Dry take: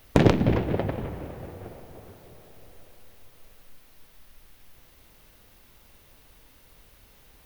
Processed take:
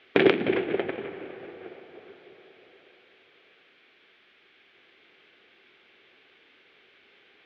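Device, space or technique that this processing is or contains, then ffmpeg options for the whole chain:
phone earpiece: -af "highpass=350,equalizer=f=380:t=q:w=4:g=9,equalizer=f=590:t=q:w=4:g=-5,equalizer=f=960:t=q:w=4:g=-8,equalizer=f=1.6k:t=q:w=4:g=5,equalizer=f=2.3k:t=q:w=4:g=8,equalizer=f=3.3k:t=q:w=4:g=6,lowpass=f=3.6k:w=0.5412,lowpass=f=3.6k:w=1.3066"

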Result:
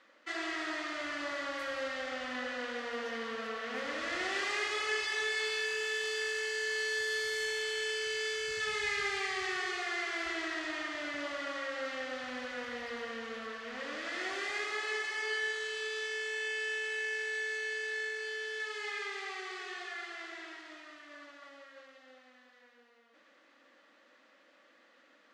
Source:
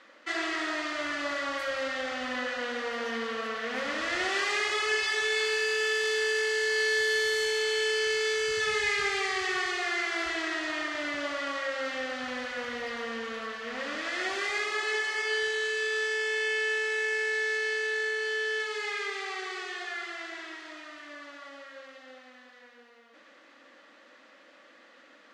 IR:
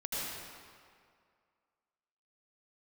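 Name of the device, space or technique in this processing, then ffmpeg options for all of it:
keyed gated reverb: -filter_complex "[0:a]asplit=3[a][b][c];[1:a]atrim=start_sample=2205[d];[b][d]afir=irnorm=-1:irlink=0[e];[c]apad=whole_len=1117295[f];[e][f]sidechaingate=range=-33dB:threshold=-44dB:ratio=16:detection=peak,volume=-9dB[g];[a][g]amix=inputs=2:normalize=0,volume=-8dB"

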